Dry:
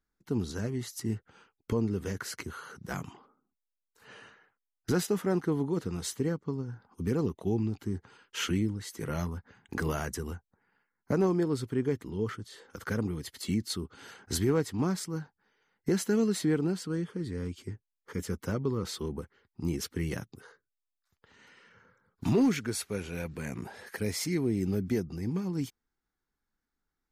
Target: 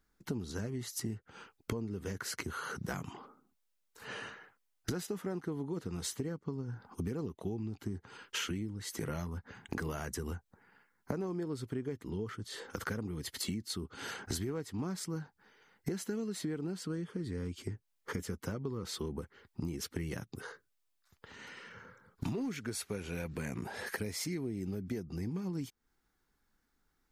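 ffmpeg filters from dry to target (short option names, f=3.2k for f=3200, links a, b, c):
-af "acompressor=threshold=-43dB:ratio=8,volume=8dB"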